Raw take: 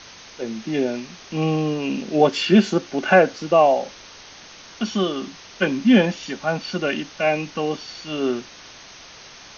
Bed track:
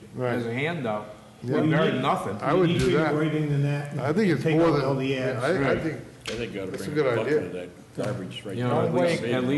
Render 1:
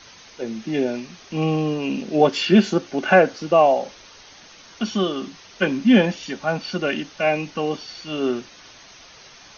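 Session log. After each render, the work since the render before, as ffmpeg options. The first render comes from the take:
-af "afftdn=nr=6:nf=-44"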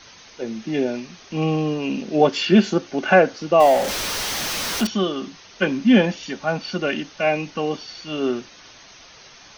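-filter_complex "[0:a]asettb=1/sr,asplit=3[a][b][c];[a]atrim=end=3.604[d];[b]atrim=start=3.6:end=4.87,asetpts=PTS-STARTPTS,afade=t=in:d=0.004:c=qsin,afade=t=out:st=1.266:d=0.004:c=qsin,aeval=exprs='val(0)+0.5*0.0944*sgn(val(0))':c=same[e];[c]atrim=start=4.866[f];[d][e]acrossfade=d=0.004:c1=hsin:c2=qsin[g];[g][f]acrossfade=d=0.004:c1=qsin:c2=hsin"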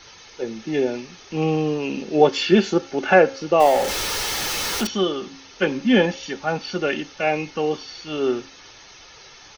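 -af "aecho=1:1:2.3:0.38,bandreject=f=270.2:t=h:w=4,bandreject=f=540.4:t=h:w=4,bandreject=f=810.6:t=h:w=4,bandreject=f=1.0808k:t=h:w=4,bandreject=f=1.351k:t=h:w=4,bandreject=f=1.6212k:t=h:w=4,bandreject=f=1.8914k:t=h:w=4,bandreject=f=2.1616k:t=h:w=4,bandreject=f=2.4318k:t=h:w=4,bandreject=f=2.702k:t=h:w=4,bandreject=f=2.9722k:t=h:w=4,bandreject=f=3.2424k:t=h:w=4,bandreject=f=3.5126k:t=h:w=4,bandreject=f=3.7828k:t=h:w=4,bandreject=f=4.053k:t=h:w=4,bandreject=f=4.3232k:t=h:w=4,bandreject=f=4.5934k:t=h:w=4,bandreject=f=4.8636k:t=h:w=4,bandreject=f=5.1338k:t=h:w=4,bandreject=f=5.404k:t=h:w=4,bandreject=f=5.6742k:t=h:w=4,bandreject=f=5.9444k:t=h:w=4,bandreject=f=6.2146k:t=h:w=4,bandreject=f=6.4848k:t=h:w=4,bandreject=f=6.755k:t=h:w=4,bandreject=f=7.0252k:t=h:w=4,bandreject=f=7.2954k:t=h:w=4,bandreject=f=7.5656k:t=h:w=4"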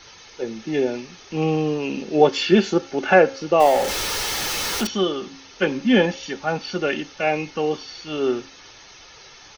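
-af anull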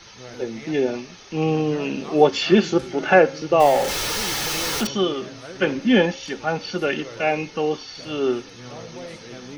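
-filter_complex "[1:a]volume=-14dB[a];[0:a][a]amix=inputs=2:normalize=0"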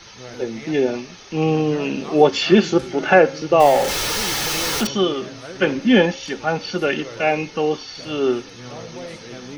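-af "volume=2.5dB,alimiter=limit=-2dB:level=0:latency=1"

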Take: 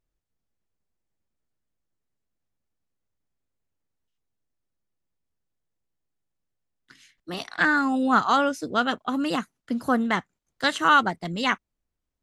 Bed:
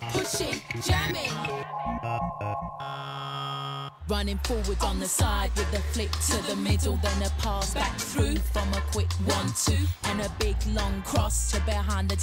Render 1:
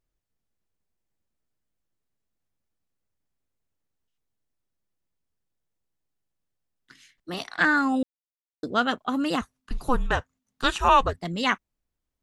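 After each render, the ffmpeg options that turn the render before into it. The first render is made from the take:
-filter_complex "[0:a]asettb=1/sr,asplit=3[a][b][c];[a]atrim=end=9.414[d];[b]atrim=start=9.41:end=11.21,asetpts=PTS-STARTPTS,afade=t=in:d=0.004:c=qsin,afade=t=out:st=1.796:d=0.004:c=qsin,afreqshift=-260[e];[c]atrim=start=11.206[f];[d][e]acrossfade=d=0.004:c1=hsin:c2=qsin[g];[g][f]acrossfade=d=0.004:c1=qsin:c2=hsin,asplit=3[h][i][j];[h]atrim=end=8.03,asetpts=PTS-STARTPTS,afade=t=out:st=8.026:d=0.004:c=hsin[k];[i]atrim=start=8.03:end=8.63,asetpts=PTS-STARTPTS,volume=0[l];[j]atrim=start=8.63,asetpts=PTS-STARTPTS,afade=t=in:d=0.004:c=hsin[m];[k][l][m]concat=n=3:v=0:a=1"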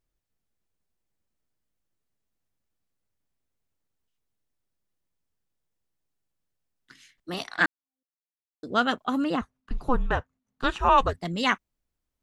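-filter_complex "[0:a]asettb=1/sr,asplit=3[a][b][c];[a]atrim=end=9.244[d];[b]atrim=start=9.24:end=10.98,asetpts=PTS-STARTPTS,afade=t=in:d=0.004:c=qsin,afade=t=out:st=1.736:d=0.004:c=qsin,lowpass=f=1.7k:p=1[e];[c]atrim=start=10.976[f];[d][e]acrossfade=d=0.004:c1=hsin:c2=qsin[g];[g][f]acrossfade=d=0.004:c1=qsin:c2=hsin,asplit=2[h][i];[h]atrim=end=7.66,asetpts=PTS-STARTPTS,afade=t=out:st=7.656:d=0.004:c=hsin[j];[i]atrim=start=7.66,asetpts=PTS-STARTPTS,afade=t=in:d=1.06:c=exp[k];[j][k]concat=n=2:v=0:a=1"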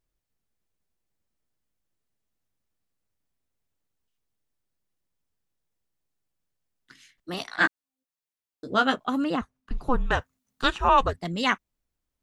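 -filter_complex "[0:a]asettb=1/sr,asplit=3[a][b][c];[a]atrim=end=7.484[d];[b]atrim=start=7.48:end=9.09,asetpts=PTS-STARTPTS,afade=t=in:d=0.004:c=qsin,afade=t=out:st=1.606:d=0.004:c=qsin,asplit=2[e][f];[f]adelay=15,volume=-4.5dB[g];[e][g]amix=inputs=2:normalize=0,atrim=end_sample=71001[h];[c]atrim=start=9.086[i];[d][h]acrossfade=d=0.004:c1=hsin:c2=qsin[j];[j][i]acrossfade=d=0.004:c1=qsin:c2=hsin,asplit=3[k][l][m];[k]afade=t=out:st=10.06:d=0.02[n];[l]highshelf=f=2.8k:g=12,afade=t=in:st=10.06:d=0.02,afade=t=out:st=10.69:d=0.02[o];[m]afade=t=in:st=10.69:d=0.02[p];[n][o][p]amix=inputs=3:normalize=0"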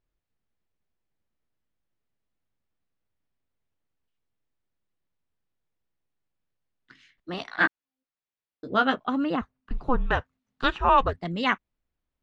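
-af "lowpass=3.4k"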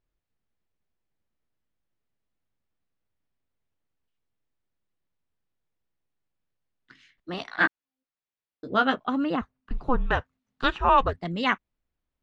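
-af anull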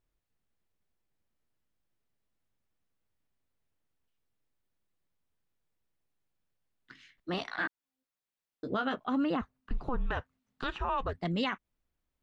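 -af "acompressor=threshold=-27dB:ratio=2.5,alimiter=limit=-22.5dB:level=0:latency=1:release=24"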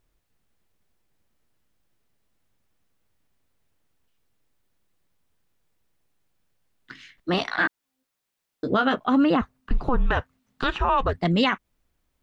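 -af "volume=10.5dB"

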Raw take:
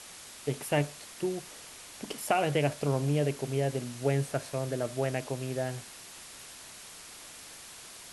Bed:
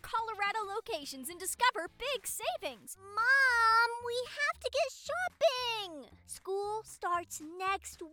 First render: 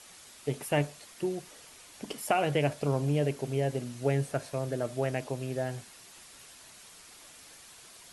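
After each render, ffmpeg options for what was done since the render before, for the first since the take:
-af "afftdn=nr=6:nf=-48"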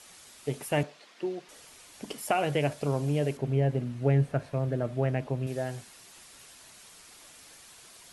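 -filter_complex "[0:a]asettb=1/sr,asplit=3[a][b][c];[a]atrim=end=0.834[d];[b]atrim=start=0.83:end=1.49,asetpts=PTS-STARTPTS,afade=t=in:d=0.004:c=qsin,afade=t=out:st=0.656:d=0.004:c=qsin,acrossover=split=200 5100:gain=0.0891 1 0.1[e][f][g];[e][f][g]amix=inputs=3:normalize=0[h];[c]atrim=start=1.486[i];[d][h]acrossfade=d=0.004:c1=hsin:c2=qsin[j];[j][i]acrossfade=d=0.004:c1=qsin:c2=hsin,asettb=1/sr,asplit=3[k][l][m];[k]atrim=end=3.374[n];[l]atrim=start=3.37:end=5.47,asetpts=PTS-STARTPTS,afade=t=in:d=0.004:c=qsin,afade=t=out:st=2.096:d=0.004:c=qsin,bass=f=250:g=7,treble=f=4k:g=-14[o];[m]atrim=start=5.466[p];[n][o]acrossfade=d=0.004:c1=hsin:c2=qsin[q];[q][p]acrossfade=d=0.004:c1=qsin:c2=hsin"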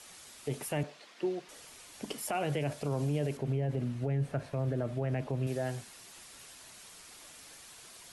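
-filter_complex "[0:a]acrossover=split=310[a][b];[b]acompressor=threshold=-27dB:ratio=6[c];[a][c]amix=inputs=2:normalize=0,alimiter=limit=-23.5dB:level=0:latency=1:release=40"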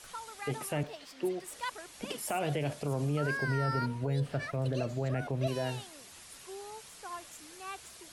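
-filter_complex "[1:a]volume=-9.5dB[a];[0:a][a]amix=inputs=2:normalize=0"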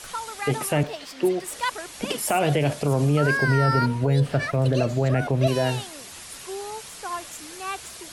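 -af "volume=11dB"

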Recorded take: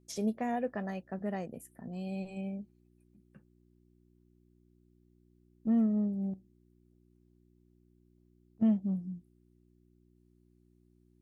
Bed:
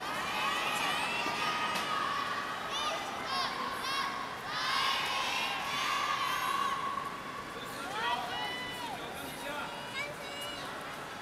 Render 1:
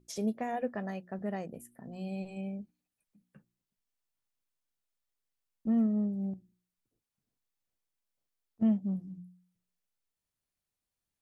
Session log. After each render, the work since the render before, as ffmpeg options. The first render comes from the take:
-af "bandreject=f=60:t=h:w=4,bandreject=f=120:t=h:w=4,bandreject=f=180:t=h:w=4,bandreject=f=240:t=h:w=4,bandreject=f=300:t=h:w=4,bandreject=f=360:t=h:w=4"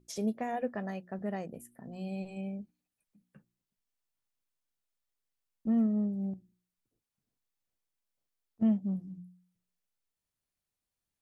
-af anull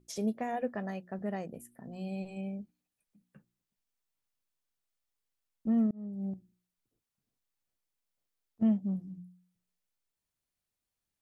-filter_complex "[0:a]asplit=2[a][b];[a]atrim=end=5.91,asetpts=PTS-STARTPTS,afade=t=out:st=5.906:d=0.004:c=hsin[c];[b]atrim=start=5.91,asetpts=PTS-STARTPTS,afade=t=in:d=0.4[d];[c][d]concat=n=2:v=0:a=1"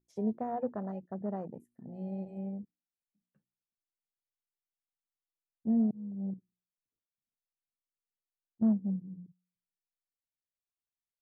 -af "afwtdn=0.01,highshelf=f=2.8k:g=-8.5"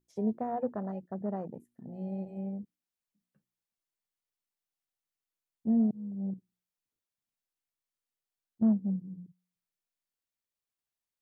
-af "volume=1.5dB"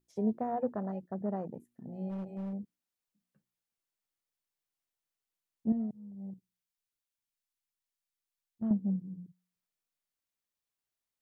-filter_complex "[0:a]asplit=3[a][b][c];[a]afade=t=out:st=2.09:d=0.02[d];[b]volume=35.5dB,asoftclip=hard,volume=-35.5dB,afade=t=in:st=2.09:d=0.02,afade=t=out:st=2.52:d=0.02[e];[c]afade=t=in:st=2.52:d=0.02[f];[d][e][f]amix=inputs=3:normalize=0,asettb=1/sr,asplit=3[g][h][i];[g]atrim=end=5.724[j];[h]atrim=start=5.72:end=8.71,asetpts=PTS-STARTPTS,afade=t=in:d=0.004:c=qsin,afade=t=out:st=2.986:d=0.004:c=qsin,equalizer=f=320:w=0.35:g=-9.5[k];[i]atrim=start=8.706[l];[j][k]acrossfade=d=0.004:c1=hsin:c2=qsin[m];[m][l]acrossfade=d=0.004:c1=qsin:c2=hsin"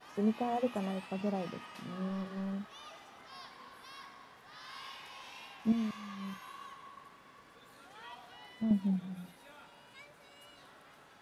-filter_complex "[1:a]volume=-17dB[a];[0:a][a]amix=inputs=2:normalize=0"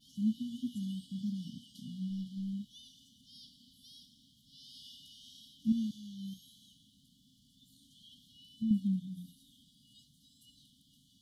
-af "afftfilt=real='re*(1-between(b*sr/4096,290,2900))':imag='im*(1-between(b*sr/4096,290,2900))':win_size=4096:overlap=0.75"

